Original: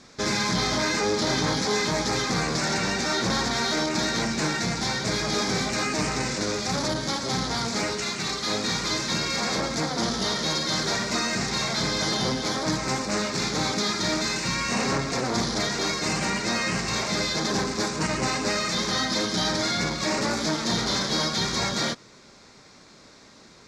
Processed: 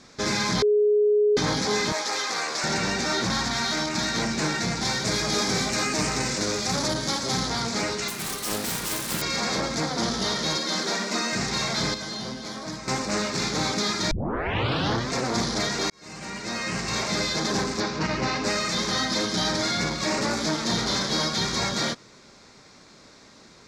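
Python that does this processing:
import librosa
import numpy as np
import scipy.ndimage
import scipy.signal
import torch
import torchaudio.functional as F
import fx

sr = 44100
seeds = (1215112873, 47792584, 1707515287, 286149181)

y = fx.highpass(x, sr, hz=580.0, slope=12, at=(1.92, 2.64))
y = fx.peak_eq(y, sr, hz=440.0, db=-8.5, octaves=0.77, at=(3.25, 4.15))
y = fx.high_shelf(y, sr, hz=7000.0, db=7.0, at=(4.85, 7.5))
y = fx.self_delay(y, sr, depth_ms=0.21, at=(8.08, 9.22))
y = fx.ellip_highpass(y, sr, hz=180.0, order=4, stop_db=40, at=(10.57, 11.33))
y = fx.comb_fb(y, sr, f0_hz=220.0, decay_s=0.18, harmonics='odd', damping=0.0, mix_pct=70, at=(11.94, 12.88))
y = fx.lowpass(y, sr, hz=5400.0, slope=24, at=(17.8, 18.44))
y = fx.edit(y, sr, fx.bleep(start_s=0.62, length_s=0.75, hz=418.0, db=-16.5),
    fx.tape_start(start_s=14.11, length_s=1.03),
    fx.fade_in_span(start_s=15.9, length_s=1.11), tone=tone)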